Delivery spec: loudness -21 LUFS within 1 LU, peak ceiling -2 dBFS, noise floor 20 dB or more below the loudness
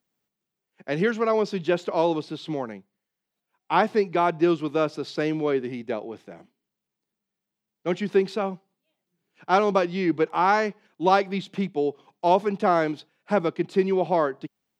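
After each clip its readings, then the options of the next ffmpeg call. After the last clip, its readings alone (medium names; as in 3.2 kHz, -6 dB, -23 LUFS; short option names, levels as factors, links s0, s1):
loudness -24.5 LUFS; peak level -6.5 dBFS; loudness target -21.0 LUFS
-> -af "volume=1.5"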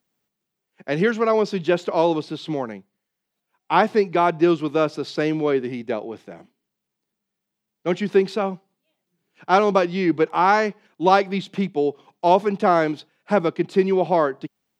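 loudness -21.0 LUFS; peak level -3.0 dBFS; noise floor -82 dBFS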